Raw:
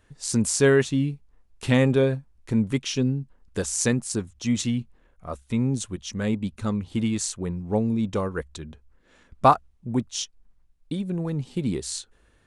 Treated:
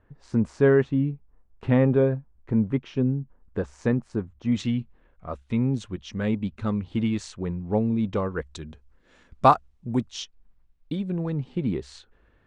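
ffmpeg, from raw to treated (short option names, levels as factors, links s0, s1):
-af "asetnsamples=n=441:p=0,asendcmd='4.52 lowpass f 3200;8.44 lowpass f 7400;10.12 lowpass f 3900;11.33 lowpass f 2400',lowpass=1400"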